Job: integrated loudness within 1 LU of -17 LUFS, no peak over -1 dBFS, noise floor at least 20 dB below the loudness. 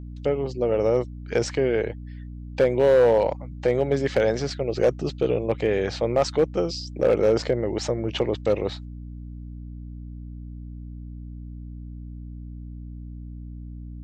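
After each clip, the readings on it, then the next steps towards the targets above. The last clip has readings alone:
clipped samples 0.6%; clipping level -12.0 dBFS; hum 60 Hz; highest harmonic 300 Hz; hum level -35 dBFS; loudness -23.5 LUFS; peak level -12.0 dBFS; loudness target -17.0 LUFS
-> clip repair -12 dBFS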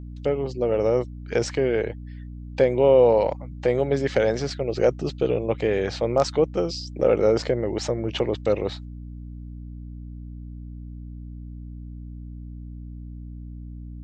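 clipped samples 0.0%; hum 60 Hz; highest harmonic 300 Hz; hum level -34 dBFS
-> de-hum 60 Hz, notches 5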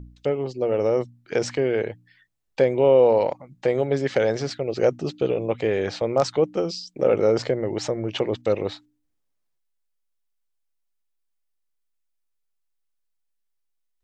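hum not found; loudness -23.0 LUFS; peak level -6.0 dBFS; loudness target -17.0 LUFS
-> trim +6 dB; peak limiter -1 dBFS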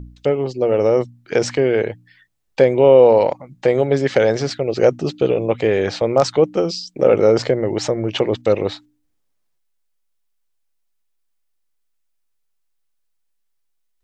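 loudness -17.0 LUFS; peak level -1.0 dBFS; noise floor -68 dBFS

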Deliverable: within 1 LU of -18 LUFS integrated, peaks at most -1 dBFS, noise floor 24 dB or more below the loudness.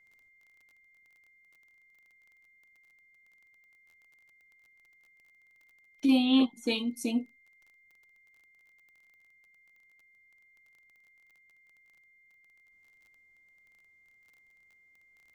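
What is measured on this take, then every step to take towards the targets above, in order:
tick rate 23 per s; steady tone 2.1 kHz; tone level -61 dBFS; loudness -28.0 LUFS; peak level -14.5 dBFS; loudness target -18.0 LUFS
-> de-click; band-stop 2.1 kHz, Q 30; trim +10 dB

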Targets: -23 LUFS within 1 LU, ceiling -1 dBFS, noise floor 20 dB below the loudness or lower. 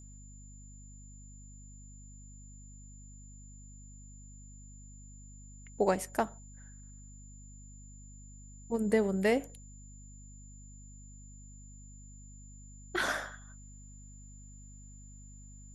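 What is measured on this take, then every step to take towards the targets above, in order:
hum 50 Hz; highest harmonic 250 Hz; hum level -49 dBFS; steady tone 7.1 kHz; tone level -56 dBFS; loudness -32.0 LUFS; peak level -14.5 dBFS; loudness target -23.0 LUFS
-> de-hum 50 Hz, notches 5; band-stop 7.1 kHz, Q 30; trim +9 dB

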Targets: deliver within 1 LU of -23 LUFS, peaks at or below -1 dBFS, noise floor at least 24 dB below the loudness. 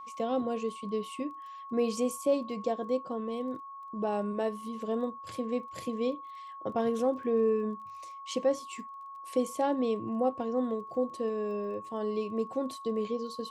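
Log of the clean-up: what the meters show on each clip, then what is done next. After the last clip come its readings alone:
tick rate 21 per s; steady tone 1.1 kHz; tone level -42 dBFS; loudness -32.5 LUFS; peak level -16.5 dBFS; loudness target -23.0 LUFS
-> de-click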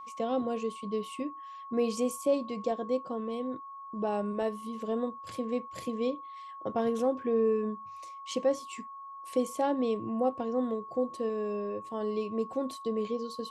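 tick rate 0 per s; steady tone 1.1 kHz; tone level -42 dBFS
-> band-stop 1.1 kHz, Q 30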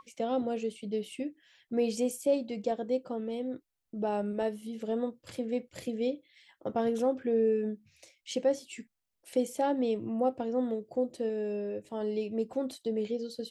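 steady tone not found; loudness -32.5 LUFS; peak level -16.5 dBFS; loudness target -23.0 LUFS
-> trim +9.5 dB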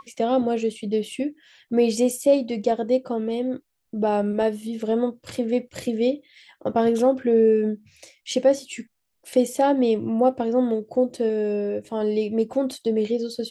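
loudness -23.0 LUFS; peak level -7.0 dBFS; noise floor -73 dBFS

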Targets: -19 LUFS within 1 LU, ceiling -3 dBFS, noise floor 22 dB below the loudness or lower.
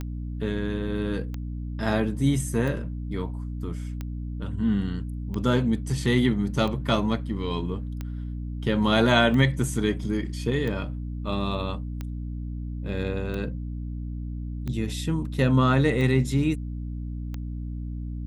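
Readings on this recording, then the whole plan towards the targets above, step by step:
clicks found 14; hum 60 Hz; highest harmonic 300 Hz; hum level -30 dBFS; loudness -27.0 LUFS; peak level -6.5 dBFS; loudness target -19.0 LUFS
-> de-click; hum notches 60/120/180/240/300 Hz; trim +8 dB; peak limiter -3 dBFS

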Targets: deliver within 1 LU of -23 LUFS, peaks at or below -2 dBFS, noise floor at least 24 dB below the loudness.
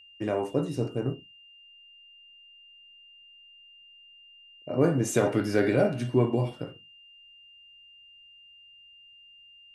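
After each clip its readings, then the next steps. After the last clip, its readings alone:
steady tone 2.8 kHz; tone level -51 dBFS; loudness -27.0 LUFS; peak level -10.5 dBFS; loudness target -23.0 LUFS
-> band-stop 2.8 kHz, Q 30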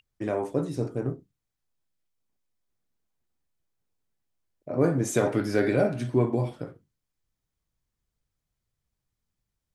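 steady tone not found; loudness -27.0 LUFS; peak level -10.5 dBFS; loudness target -23.0 LUFS
-> trim +4 dB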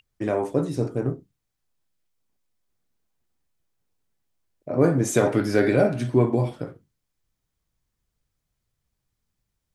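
loudness -23.0 LUFS; peak level -6.5 dBFS; noise floor -80 dBFS

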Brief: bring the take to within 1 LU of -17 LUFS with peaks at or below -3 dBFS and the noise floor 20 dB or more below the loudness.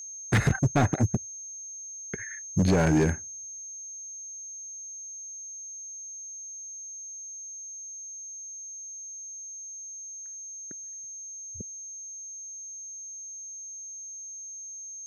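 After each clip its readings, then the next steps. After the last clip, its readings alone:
clipped samples 0.6%; clipping level -17.0 dBFS; steady tone 6.4 kHz; tone level -38 dBFS; loudness -32.5 LUFS; peak level -17.0 dBFS; loudness target -17.0 LUFS
-> clip repair -17 dBFS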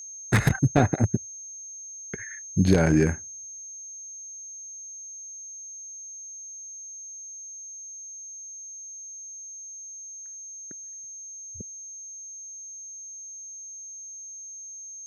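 clipped samples 0.0%; steady tone 6.4 kHz; tone level -38 dBFS
-> band-stop 6.4 kHz, Q 30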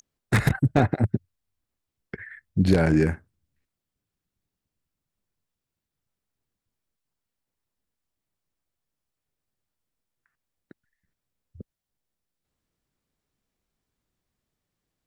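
steady tone not found; loudness -23.5 LUFS; peak level -7.5 dBFS; loudness target -17.0 LUFS
-> trim +6.5 dB; peak limiter -3 dBFS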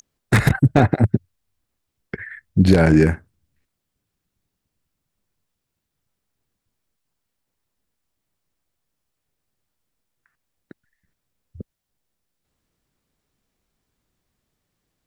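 loudness -17.0 LUFS; peak level -3.0 dBFS; noise floor -80 dBFS

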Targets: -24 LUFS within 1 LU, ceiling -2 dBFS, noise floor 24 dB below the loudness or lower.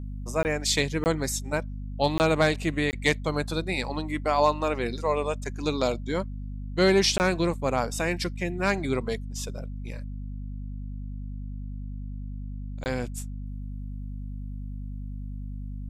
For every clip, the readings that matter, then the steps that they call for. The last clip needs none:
dropouts 6; longest dropout 19 ms; hum 50 Hz; highest harmonic 250 Hz; hum level -32 dBFS; loudness -28.5 LUFS; peak level -10.0 dBFS; loudness target -24.0 LUFS
-> interpolate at 0.43/1.04/2.18/2.91/7.18/12.84 s, 19 ms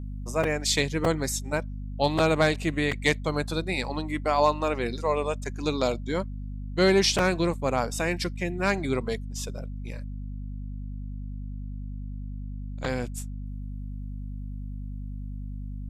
dropouts 0; hum 50 Hz; highest harmonic 250 Hz; hum level -32 dBFS
-> de-hum 50 Hz, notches 5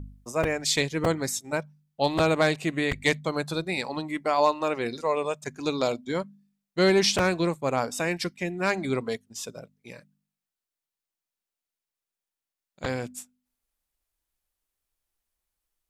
hum not found; loudness -26.5 LUFS; peak level -10.0 dBFS; loudness target -24.0 LUFS
-> trim +2.5 dB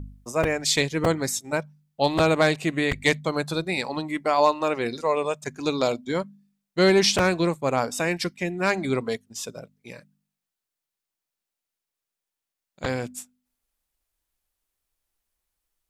loudness -24.0 LUFS; peak level -7.5 dBFS; noise floor -87 dBFS

